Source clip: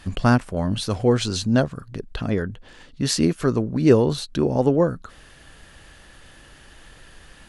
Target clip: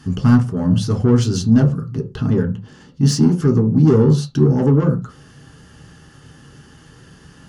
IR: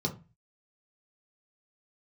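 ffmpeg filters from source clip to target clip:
-filter_complex "[0:a]highpass=56,asoftclip=type=tanh:threshold=0.141,asplit=2[s0][s1];[1:a]atrim=start_sample=2205,afade=t=out:st=0.19:d=0.01,atrim=end_sample=8820[s2];[s1][s2]afir=irnorm=-1:irlink=0,volume=0.596[s3];[s0][s3]amix=inputs=2:normalize=0"

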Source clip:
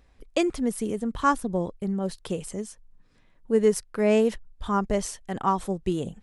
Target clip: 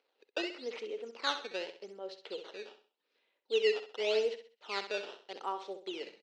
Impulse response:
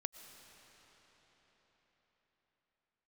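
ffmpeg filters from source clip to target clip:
-af "acrusher=samples=12:mix=1:aa=0.000001:lfo=1:lforange=19.2:lforate=0.85,highpass=f=420:w=0.5412,highpass=f=420:w=1.3066,equalizer=f=440:t=q:w=4:g=3,equalizer=f=700:t=q:w=4:g=-5,equalizer=f=1100:t=q:w=4:g=-8,equalizer=f=1700:t=q:w=4:g=-5,equalizer=f=2800:t=q:w=4:g=6,equalizer=f=4100:t=q:w=4:g=4,lowpass=f=5000:w=0.5412,lowpass=f=5000:w=1.3066,aecho=1:1:65|130|195|260:0.316|0.108|0.0366|0.0124,volume=0.398"

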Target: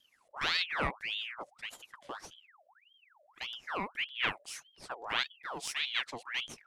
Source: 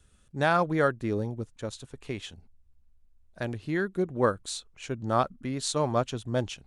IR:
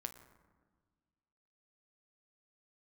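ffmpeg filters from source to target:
-af "aeval=exprs='0.266*(cos(1*acos(clip(val(0)/0.266,-1,1)))-cos(1*PI/2))+0.0668*(cos(2*acos(clip(val(0)/0.266,-1,1)))-cos(2*PI/2))+0.00841*(cos(6*acos(clip(val(0)/0.266,-1,1)))-cos(6*PI/2))':c=same,aeval=exprs='val(0)*sin(2*PI*1900*n/s+1900*0.7/1.7*sin(2*PI*1.7*n/s))':c=same,volume=0.531"

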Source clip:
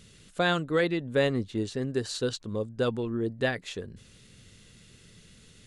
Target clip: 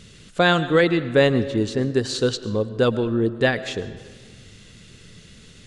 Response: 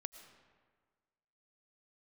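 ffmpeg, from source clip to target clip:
-filter_complex "[0:a]asplit=2[s0][s1];[1:a]atrim=start_sample=2205,lowpass=8900[s2];[s1][s2]afir=irnorm=-1:irlink=0,volume=2.51[s3];[s0][s3]amix=inputs=2:normalize=0"

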